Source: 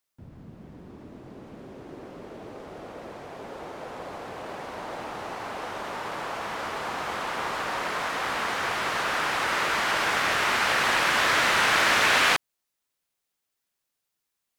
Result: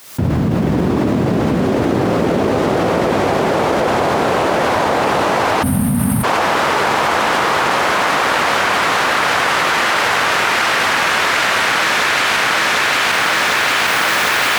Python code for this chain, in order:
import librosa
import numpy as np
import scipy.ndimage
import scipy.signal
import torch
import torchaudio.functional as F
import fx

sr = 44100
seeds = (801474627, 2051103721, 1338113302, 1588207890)

y = fx.recorder_agc(x, sr, target_db=-12.0, rise_db_per_s=57.0, max_gain_db=30)
y = scipy.signal.sosfilt(scipy.signal.butter(2, 70.0, 'highpass', fs=sr, output='sos'), y)
y = fx.echo_feedback(y, sr, ms=752, feedback_pct=47, wet_db=-3)
y = fx.spec_box(y, sr, start_s=5.62, length_s=0.62, low_hz=260.0, high_hz=8400.0, gain_db=-29)
y = fx.env_flatten(y, sr, amount_pct=100)